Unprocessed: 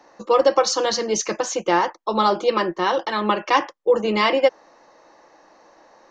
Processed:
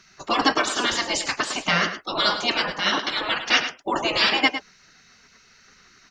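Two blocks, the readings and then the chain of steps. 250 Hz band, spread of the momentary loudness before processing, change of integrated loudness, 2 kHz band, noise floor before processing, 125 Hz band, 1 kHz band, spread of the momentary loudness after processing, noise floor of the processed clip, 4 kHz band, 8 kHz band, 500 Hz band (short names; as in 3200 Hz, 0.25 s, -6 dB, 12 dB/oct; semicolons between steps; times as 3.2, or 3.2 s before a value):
-3.0 dB, 5 LU, -1.5 dB, +5.0 dB, -54 dBFS, 0.0 dB, -4.5 dB, 6 LU, -56 dBFS, +6.0 dB, -3.0 dB, -11.0 dB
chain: spectral gate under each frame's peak -15 dB weak; bell 78 Hz +6 dB 0.25 oct; outdoor echo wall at 18 m, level -10 dB; gain +8.5 dB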